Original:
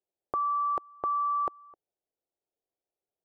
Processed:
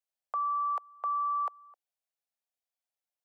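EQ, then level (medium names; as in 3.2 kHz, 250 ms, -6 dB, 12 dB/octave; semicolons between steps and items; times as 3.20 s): Bessel high-pass 980 Hz, order 8; 0.0 dB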